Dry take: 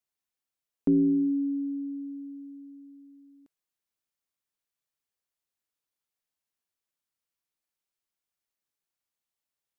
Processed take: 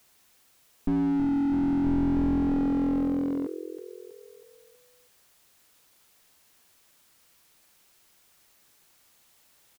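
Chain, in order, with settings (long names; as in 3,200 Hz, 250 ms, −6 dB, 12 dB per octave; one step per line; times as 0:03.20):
on a send: echo with shifted repeats 322 ms, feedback 52%, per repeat +43 Hz, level −14.5 dB
on the sum: boost into a limiter +27 dB
slew-rate limiting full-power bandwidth 18 Hz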